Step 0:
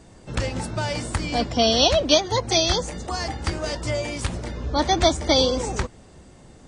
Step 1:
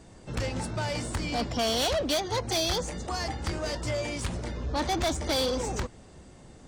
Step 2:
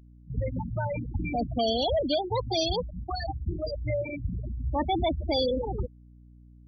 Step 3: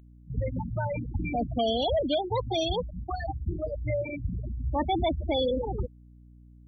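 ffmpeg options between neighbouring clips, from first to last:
ffmpeg -i in.wav -af "asoftclip=type=tanh:threshold=-21dB,volume=-2.5dB" out.wav
ffmpeg -i in.wav -af "afftfilt=real='re*gte(hypot(re,im),0.1)':imag='im*gte(hypot(re,im),0.1)':win_size=1024:overlap=0.75,aeval=exprs='val(0)+0.00224*(sin(2*PI*60*n/s)+sin(2*PI*2*60*n/s)/2+sin(2*PI*3*60*n/s)/3+sin(2*PI*4*60*n/s)/4+sin(2*PI*5*60*n/s)/5)':channel_layout=same,volume=2.5dB" out.wav
ffmpeg -i in.wav -af "asuperstop=centerf=4900:order=4:qfactor=2.3" out.wav

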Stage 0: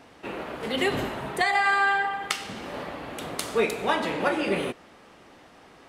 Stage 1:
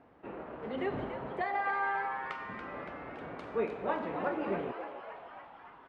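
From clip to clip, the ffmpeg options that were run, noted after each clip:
ffmpeg -i in.wav -filter_complex "[0:a]lowpass=1400,asplit=9[link_01][link_02][link_03][link_04][link_05][link_06][link_07][link_08][link_09];[link_02]adelay=283,afreqshift=130,volume=-9.5dB[link_10];[link_03]adelay=566,afreqshift=260,volume=-13.5dB[link_11];[link_04]adelay=849,afreqshift=390,volume=-17.5dB[link_12];[link_05]adelay=1132,afreqshift=520,volume=-21.5dB[link_13];[link_06]adelay=1415,afreqshift=650,volume=-25.6dB[link_14];[link_07]adelay=1698,afreqshift=780,volume=-29.6dB[link_15];[link_08]adelay=1981,afreqshift=910,volume=-33.6dB[link_16];[link_09]adelay=2264,afreqshift=1040,volume=-37.6dB[link_17];[link_01][link_10][link_11][link_12][link_13][link_14][link_15][link_16][link_17]amix=inputs=9:normalize=0,volume=-8dB" out.wav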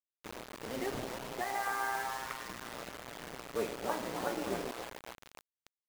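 ffmpeg -i in.wav -af "tremolo=f=120:d=0.667,acrusher=bits=6:mix=0:aa=0.000001" out.wav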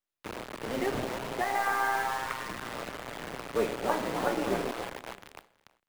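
ffmpeg -i in.wav -filter_complex "[0:a]acrossover=split=170|1100|3700[link_01][link_02][link_03][link_04];[link_04]aeval=exprs='max(val(0),0)':channel_layout=same[link_05];[link_01][link_02][link_03][link_05]amix=inputs=4:normalize=0,aecho=1:1:323|646:0.0841|0.0278,volume=6.5dB" out.wav

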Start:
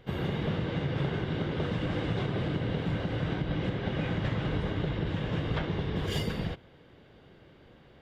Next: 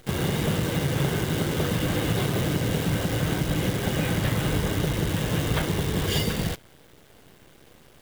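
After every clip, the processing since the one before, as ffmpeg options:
ffmpeg -i in.wav -af "acrusher=bits=8:dc=4:mix=0:aa=0.000001,highshelf=frequency=4100:gain=7.5,volume=5.5dB" out.wav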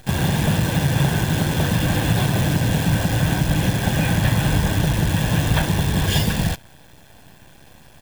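ffmpeg -i in.wav -af "aecho=1:1:1.2:0.53,volume=4.5dB" out.wav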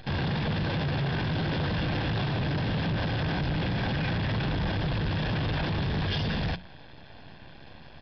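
ffmpeg -i in.wav -af "bandreject=frequency=60:width_type=h:width=6,bandreject=frequency=120:width_type=h:width=6,bandreject=frequency=180:width_type=h:width=6,alimiter=limit=-15dB:level=0:latency=1:release=20,aresample=11025,asoftclip=type=tanh:threshold=-25dB,aresample=44100" out.wav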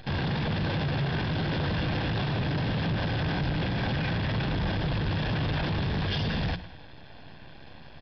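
ffmpeg -i in.wav -af "aecho=1:1:104|208|312|416:0.158|0.0697|0.0307|0.0135" out.wav

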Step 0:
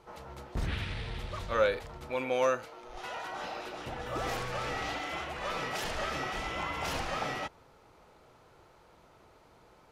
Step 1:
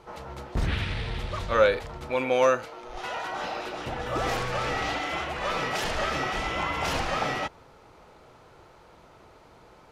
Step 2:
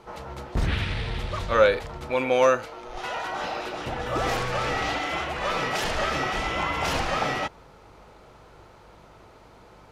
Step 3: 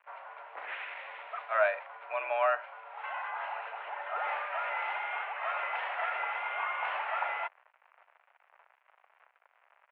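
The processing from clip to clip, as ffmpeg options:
ffmpeg -i in.wav -af "highshelf=frequency=11000:gain=-7.5,volume=6.5dB" out.wav
ffmpeg -i in.wav -af "aeval=exprs='val(0)+0.00112*(sin(2*PI*50*n/s)+sin(2*PI*2*50*n/s)/2+sin(2*PI*3*50*n/s)/3+sin(2*PI*4*50*n/s)/4+sin(2*PI*5*50*n/s)/5)':channel_layout=same,volume=2dB" out.wav
ffmpeg -i in.wav -af "acrusher=bits=6:mix=0:aa=0.5,highpass=frequency=570:width_type=q:width=0.5412,highpass=frequency=570:width_type=q:width=1.307,lowpass=frequency=2500:width_type=q:width=0.5176,lowpass=frequency=2500:width_type=q:width=0.7071,lowpass=frequency=2500:width_type=q:width=1.932,afreqshift=91,volume=-5.5dB" out.wav

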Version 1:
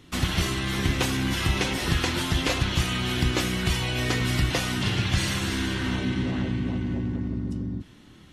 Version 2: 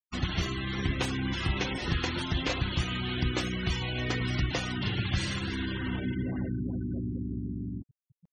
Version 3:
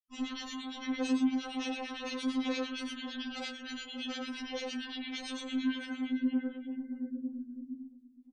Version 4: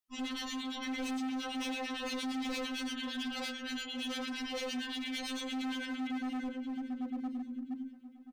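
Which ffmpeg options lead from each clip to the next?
ffmpeg -i in.wav -af "afftfilt=real='re*gte(hypot(re,im),0.0355)':imag='im*gte(hypot(re,im),0.0355)':win_size=1024:overlap=0.75,areverse,acompressor=mode=upward:threshold=-46dB:ratio=2.5,areverse,volume=-5dB" out.wav
ffmpeg -i in.wav -filter_complex "[0:a]aecho=1:1:41|50|84|115|577|603:0.631|0.501|0.631|0.447|0.106|0.335,acrossover=split=1500[link_01][link_02];[link_01]aeval=exprs='val(0)*(1-1/2+1/2*cos(2*PI*8.8*n/s))':channel_layout=same[link_03];[link_02]aeval=exprs='val(0)*(1-1/2-1/2*cos(2*PI*8.8*n/s))':channel_layout=same[link_04];[link_03][link_04]amix=inputs=2:normalize=0,afftfilt=real='re*3.46*eq(mod(b,12),0)':imag='im*3.46*eq(mod(b,12),0)':win_size=2048:overlap=0.75,volume=-2.5dB" out.wav
ffmpeg -i in.wav -af "asoftclip=type=hard:threshold=-37.5dB,aecho=1:1:1028|2056:0.1|0.023,volume=3dB" out.wav

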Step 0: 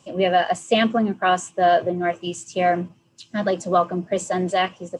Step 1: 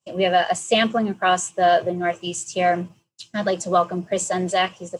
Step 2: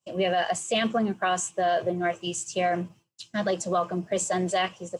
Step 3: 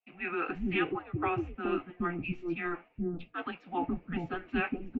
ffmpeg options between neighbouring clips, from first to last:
ffmpeg -i in.wav -af "equalizer=frequency=270:width=4:gain=-8,agate=range=-33dB:threshold=-43dB:ratio=3:detection=peak,highshelf=frequency=4600:gain=9" out.wav
ffmpeg -i in.wav -af "alimiter=limit=-13dB:level=0:latency=1:release=33,volume=-3dB" out.wav
ffmpeg -i in.wav -filter_complex "[0:a]acrossover=split=780[link_01][link_02];[link_01]adelay=420[link_03];[link_03][link_02]amix=inputs=2:normalize=0,highpass=frequency=490:width_type=q:width=0.5412,highpass=frequency=490:width_type=q:width=1.307,lowpass=frequency=3100:width_type=q:width=0.5176,lowpass=frequency=3100:width_type=q:width=0.7071,lowpass=frequency=3100:width_type=q:width=1.932,afreqshift=-350,flanger=delay=1.4:depth=2.6:regen=-66:speed=0.95:shape=sinusoidal,volume=2dB" out.wav

